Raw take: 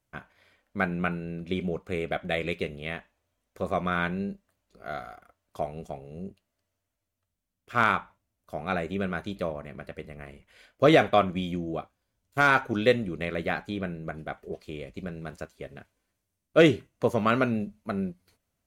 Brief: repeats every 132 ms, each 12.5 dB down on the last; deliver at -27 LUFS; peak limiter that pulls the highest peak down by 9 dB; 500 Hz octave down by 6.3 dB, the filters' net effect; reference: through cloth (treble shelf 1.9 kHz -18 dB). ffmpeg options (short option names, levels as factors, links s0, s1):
-af "equalizer=f=500:t=o:g=-6,alimiter=limit=0.126:level=0:latency=1,highshelf=f=1900:g=-18,aecho=1:1:132|264|396:0.237|0.0569|0.0137,volume=2.66"